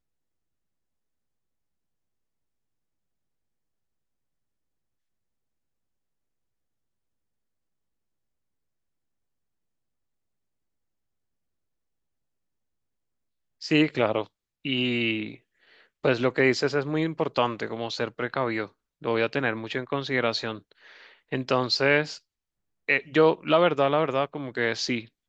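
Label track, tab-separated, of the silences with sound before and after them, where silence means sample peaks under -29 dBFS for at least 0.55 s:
15.280000	16.050000	silence
20.550000	21.330000	silence
22.140000	22.890000	silence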